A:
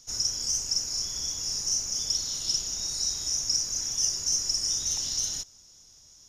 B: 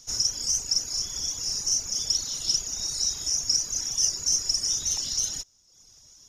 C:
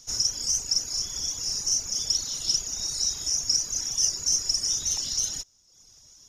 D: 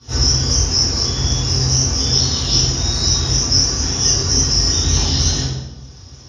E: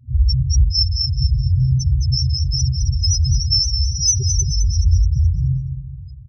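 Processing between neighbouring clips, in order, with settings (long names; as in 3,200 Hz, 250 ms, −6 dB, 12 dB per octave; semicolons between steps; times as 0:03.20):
reverb reduction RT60 0.88 s; level +3.5 dB
no processing that can be heard
Savitzky-Golay smoothing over 15 samples; convolution reverb RT60 1.1 s, pre-delay 3 ms, DRR −16 dB; level −3 dB
spectral peaks only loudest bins 2; repeating echo 212 ms, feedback 31%, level −8 dB; level +6.5 dB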